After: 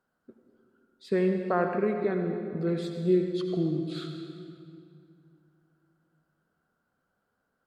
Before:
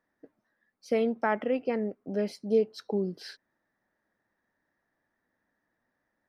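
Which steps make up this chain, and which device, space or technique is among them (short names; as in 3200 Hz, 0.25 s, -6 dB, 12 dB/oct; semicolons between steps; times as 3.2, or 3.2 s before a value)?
slowed and reverbed (varispeed -18%; reverb RT60 2.4 s, pre-delay 68 ms, DRR 4 dB)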